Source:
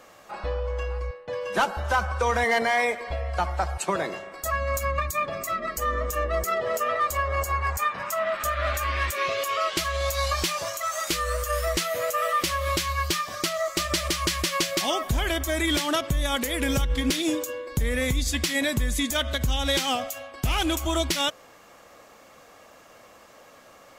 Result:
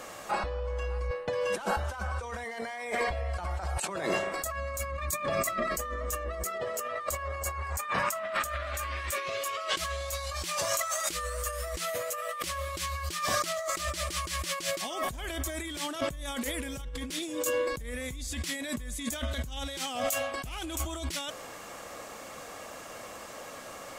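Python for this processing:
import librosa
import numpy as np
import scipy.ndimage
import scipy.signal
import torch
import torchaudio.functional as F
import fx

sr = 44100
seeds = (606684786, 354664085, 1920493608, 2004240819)

y = fx.peak_eq(x, sr, hz=8700.0, db=6.0, octaves=0.66)
y = fx.over_compress(y, sr, threshold_db=-34.0, ratio=-1.0)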